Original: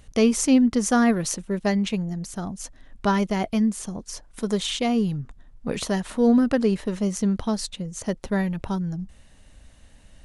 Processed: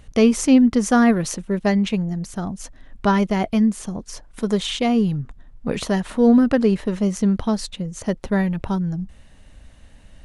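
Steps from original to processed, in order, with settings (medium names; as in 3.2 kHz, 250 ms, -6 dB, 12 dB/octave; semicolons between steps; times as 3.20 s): tone controls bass +1 dB, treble -5 dB; trim +3.5 dB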